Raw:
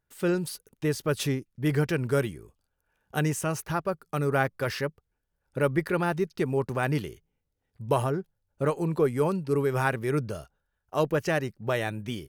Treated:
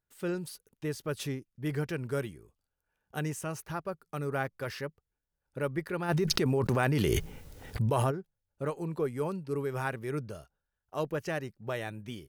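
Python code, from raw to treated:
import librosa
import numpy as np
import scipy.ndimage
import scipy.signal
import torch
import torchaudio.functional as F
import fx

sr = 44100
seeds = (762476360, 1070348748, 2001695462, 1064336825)

y = fx.env_flatten(x, sr, amount_pct=100, at=(6.08, 8.1), fade=0.02)
y = F.gain(torch.from_numpy(y), -7.5).numpy()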